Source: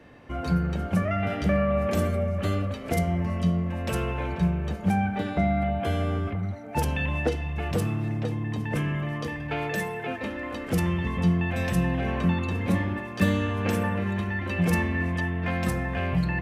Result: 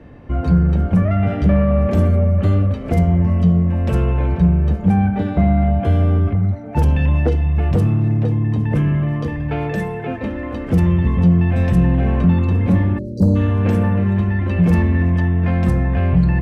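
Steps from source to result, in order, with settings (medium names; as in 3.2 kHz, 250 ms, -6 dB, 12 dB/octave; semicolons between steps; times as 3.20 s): spectral selection erased 12.99–13.36 s, 660–3900 Hz; Chebyshev shaper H 5 -19 dB, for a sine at -10 dBFS; tilt EQ -3 dB/octave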